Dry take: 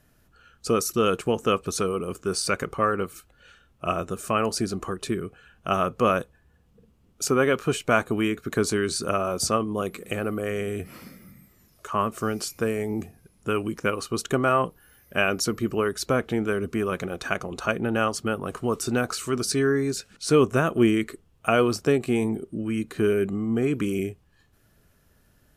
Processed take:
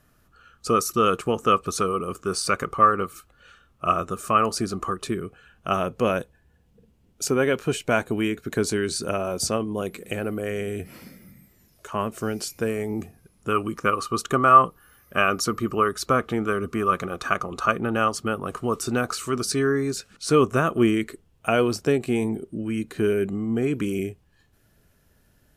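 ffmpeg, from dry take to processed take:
ffmpeg -i in.wav -af "asetnsamples=nb_out_samples=441:pad=0,asendcmd='5.06 equalizer g 2;5.79 equalizer g -8.5;12.69 equalizer g 3.5;13.52 equalizer g 14;17.92 equalizer g 6;20.95 equalizer g -4',equalizer=frequency=1200:width_type=o:width=0.24:gain=10" out.wav

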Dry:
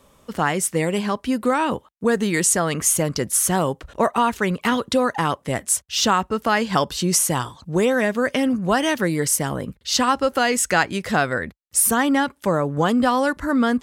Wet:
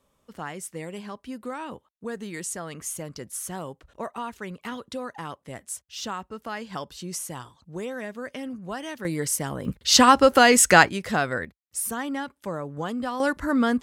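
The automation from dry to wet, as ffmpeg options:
ffmpeg -i in.wav -af "asetnsamples=nb_out_samples=441:pad=0,asendcmd='9.05 volume volume -6dB;9.65 volume volume 4dB;10.89 volume volume -4.5dB;11.45 volume volume -11.5dB;13.2 volume volume -3dB',volume=-14.5dB" out.wav

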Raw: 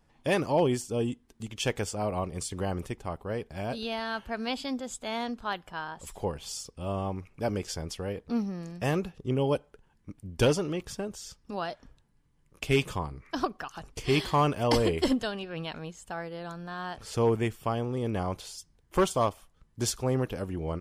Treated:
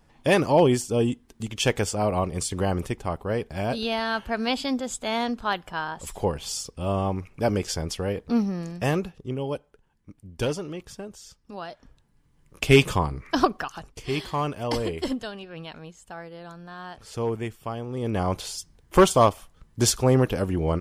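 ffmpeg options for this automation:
ffmpeg -i in.wav -af "volume=29.5dB,afade=type=out:start_time=8.6:duration=0.77:silence=0.334965,afade=type=in:start_time=11.69:duration=1.04:silence=0.251189,afade=type=out:start_time=13.51:duration=0.42:silence=0.266073,afade=type=in:start_time=17.86:duration=0.59:silence=0.281838" out.wav

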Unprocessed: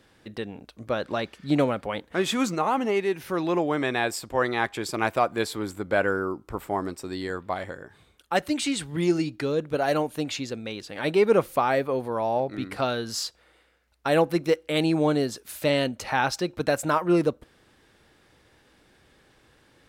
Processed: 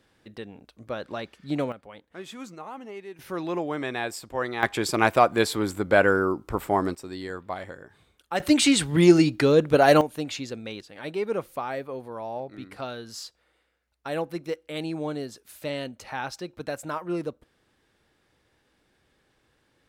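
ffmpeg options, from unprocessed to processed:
ffmpeg -i in.wav -af "asetnsamples=nb_out_samples=441:pad=0,asendcmd='1.72 volume volume -15dB;3.19 volume volume -4.5dB;4.63 volume volume 4.5dB;6.95 volume volume -3.5dB;8.4 volume volume 7.5dB;10.01 volume volume -2dB;10.81 volume volume -8.5dB',volume=-5.5dB" out.wav

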